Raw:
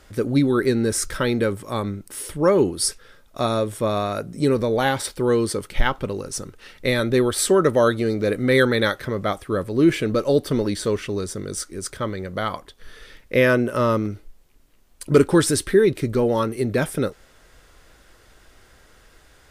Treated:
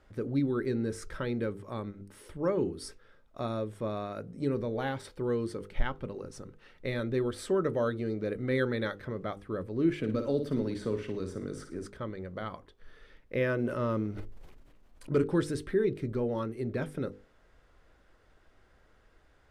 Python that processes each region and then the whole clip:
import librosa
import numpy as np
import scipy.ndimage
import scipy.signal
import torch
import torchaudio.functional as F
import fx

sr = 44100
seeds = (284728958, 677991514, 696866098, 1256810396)

y = fx.chain(x, sr, fx.peak_eq(hz=260.0, db=5.5, octaves=0.28),
    fx.room_flutter(wall_m=9.4, rt60_s=0.39),
    fx.band_squash(depth_pct=40), at=(9.98, 11.86))
y = fx.chain(y, sr, fx.law_mismatch(coded='mu'),
    fx.sustainer(db_per_s=38.0), at=(13.58, 15.09))
y = fx.lowpass(y, sr, hz=1500.0, slope=6)
y = fx.hum_notches(y, sr, base_hz=50, count=10)
y = fx.dynamic_eq(y, sr, hz=840.0, q=0.85, threshold_db=-31.0, ratio=4.0, max_db=-4)
y = y * librosa.db_to_amplitude(-9.0)